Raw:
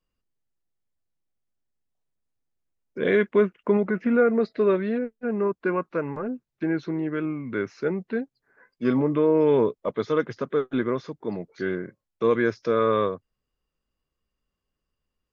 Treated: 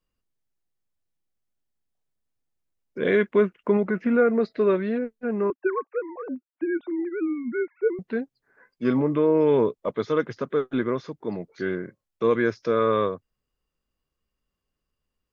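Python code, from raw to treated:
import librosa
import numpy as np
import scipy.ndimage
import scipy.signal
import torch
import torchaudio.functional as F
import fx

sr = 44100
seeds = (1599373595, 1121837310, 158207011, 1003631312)

y = fx.sine_speech(x, sr, at=(5.5, 7.99))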